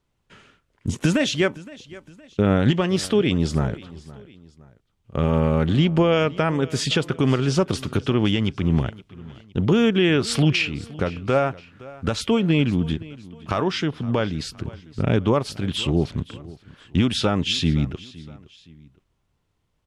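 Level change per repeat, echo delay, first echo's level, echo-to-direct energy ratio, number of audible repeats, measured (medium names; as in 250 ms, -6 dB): -7.5 dB, 516 ms, -20.0 dB, -19.5 dB, 2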